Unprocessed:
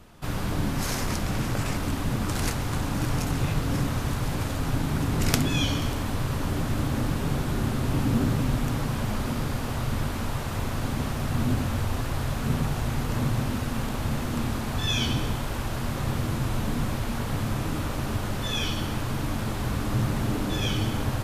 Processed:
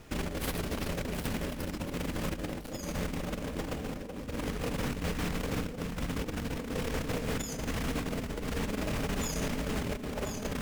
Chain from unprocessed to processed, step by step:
low-shelf EQ 78 Hz +3 dB
compressor whose output falls as the input rises −28 dBFS, ratio −0.5
wrong playback speed 7.5 ips tape played at 15 ips
level −5.5 dB

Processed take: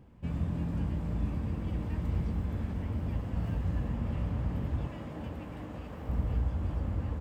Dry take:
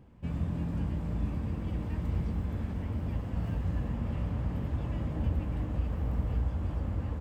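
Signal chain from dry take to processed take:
0:04.87–0:06.09: high-pass filter 310 Hz 6 dB per octave

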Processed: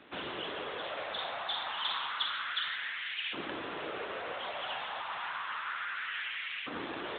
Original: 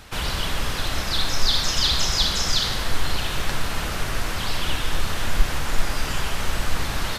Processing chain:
auto-filter high-pass saw up 0.3 Hz 270–2,400 Hz
level −8 dB
AMR narrowband 10.2 kbit/s 8,000 Hz

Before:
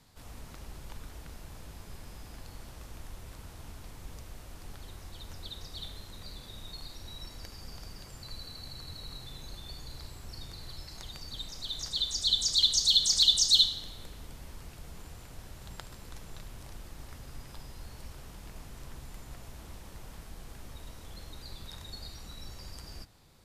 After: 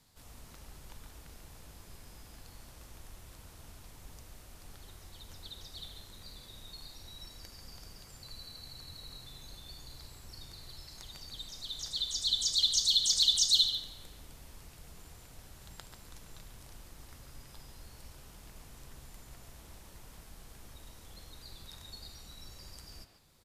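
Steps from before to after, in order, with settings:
high-shelf EQ 4,100 Hz +6.5 dB
far-end echo of a speakerphone 140 ms, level −6 dB
level −6.5 dB

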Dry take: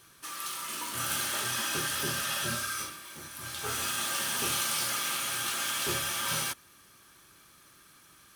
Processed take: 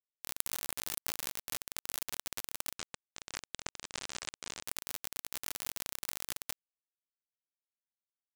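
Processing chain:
output level in coarse steps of 23 dB
bit reduction 6 bits
0:02.78–0:04.63: Butterworth low-pass 8,200 Hz 36 dB per octave
level +16.5 dB

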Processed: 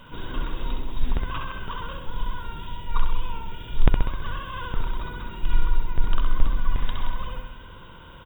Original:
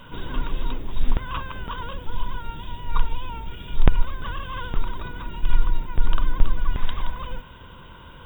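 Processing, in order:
repeating echo 65 ms, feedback 58%, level −5 dB
level −2.5 dB

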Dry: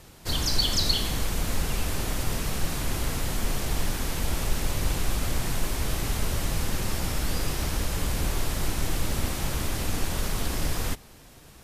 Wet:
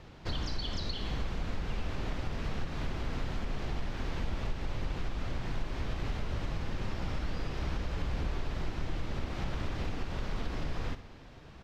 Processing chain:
downward compressor 4 to 1, threshold −30 dBFS, peak gain reduction 11.5 dB
high-frequency loss of the air 210 metres
on a send: repeating echo 62 ms, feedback 57%, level −13 dB

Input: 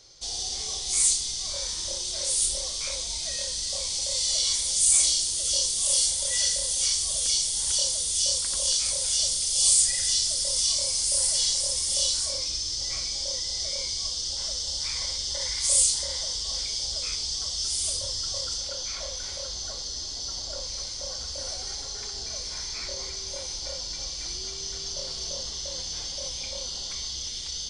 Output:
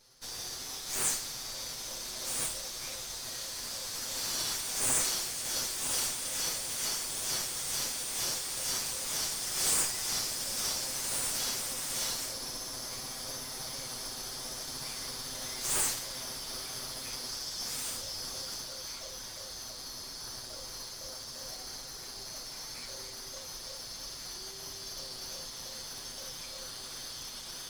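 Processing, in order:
lower of the sound and its delayed copy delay 7.9 ms
level −7 dB

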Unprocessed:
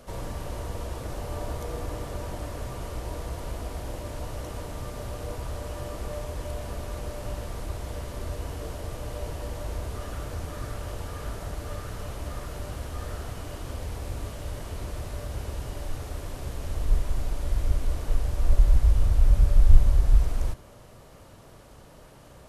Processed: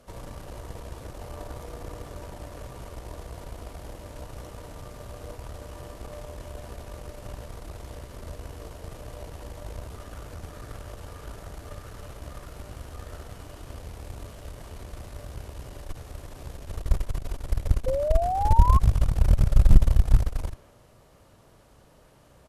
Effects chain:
far-end echo of a speakerphone 170 ms, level −12 dB
harmonic generator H 2 −8 dB, 6 −14 dB, 7 −24 dB, 8 −31 dB, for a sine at −2.5 dBFS
sound drawn into the spectrogram rise, 0:17.86–0:18.79, 510–1,100 Hz −25 dBFS
level −1 dB

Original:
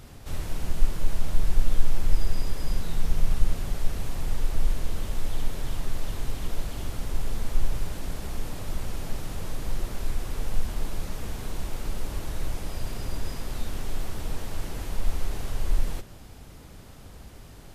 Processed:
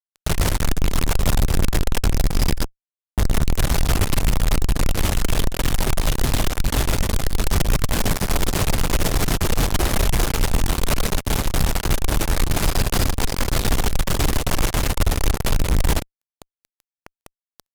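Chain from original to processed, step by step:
0:02.57–0:03.18: gate with flip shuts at −18 dBFS, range −39 dB
harmonic generator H 4 −37 dB, 6 −10 dB, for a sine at −4.5 dBFS
fuzz pedal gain 38 dB, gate −35 dBFS

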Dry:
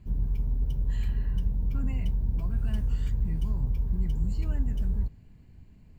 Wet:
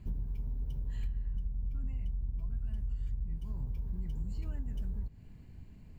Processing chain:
0:01.03–0:03.38: low-shelf EQ 120 Hz +11 dB
downward compressor 12 to 1, threshold −33 dBFS, peak gain reduction 21 dB
level +1 dB

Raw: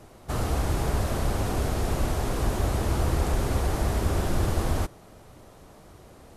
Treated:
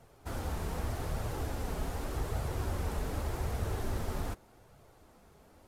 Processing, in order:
flanger 0.75 Hz, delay 1.5 ms, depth 4 ms, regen −46%
speed change +12%
level −6 dB

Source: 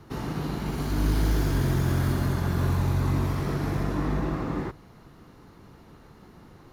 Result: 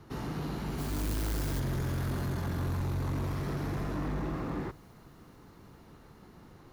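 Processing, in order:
0:00.78–0:01.60: noise that follows the level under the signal 14 dB
delay with a high-pass on its return 419 ms, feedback 81%, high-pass 5,300 Hz, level −23 dB
soft clipping −24.5 dBFS, distortion −11 dB
level −3.5 dB

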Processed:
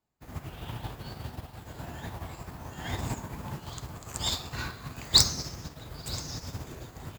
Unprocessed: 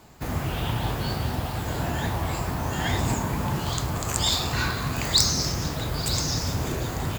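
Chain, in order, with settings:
expander for the loud parts 2.5 to 1, over −40 dBFS
level +2.5 dB

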